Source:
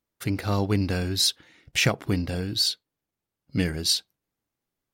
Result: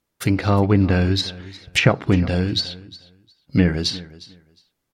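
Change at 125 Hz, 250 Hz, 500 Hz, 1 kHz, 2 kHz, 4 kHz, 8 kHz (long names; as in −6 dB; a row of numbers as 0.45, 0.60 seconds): +8.5, +8.5, +8.0, +8.0, +5.5, 0.0, −5.5 decibels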